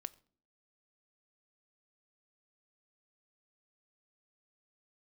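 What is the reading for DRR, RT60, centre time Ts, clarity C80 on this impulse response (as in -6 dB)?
11.5 dB, 0.50 s, 3 ms, 24.5 dB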